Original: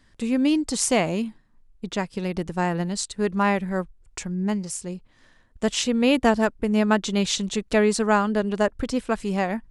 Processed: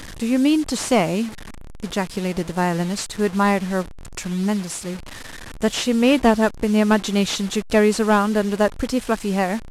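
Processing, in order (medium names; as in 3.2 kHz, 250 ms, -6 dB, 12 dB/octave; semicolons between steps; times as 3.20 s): one-bit delta coder 64 kbps, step -33 dBFS; trim +3.5 dB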